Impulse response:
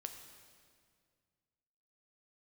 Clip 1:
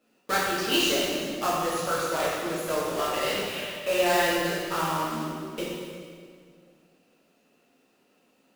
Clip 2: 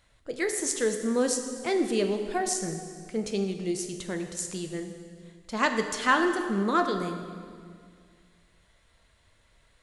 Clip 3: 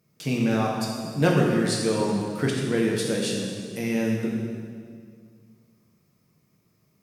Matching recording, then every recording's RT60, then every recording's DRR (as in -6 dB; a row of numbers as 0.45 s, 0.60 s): 2; 2.0 s, 2.0 s, 2.0 s; -9.0 dB, 5.0 dB, -3.0 dB